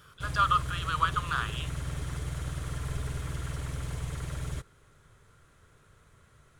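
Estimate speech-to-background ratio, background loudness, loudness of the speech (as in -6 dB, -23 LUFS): 7.0 dB, -36.5 LUFS, -29.5 LUFS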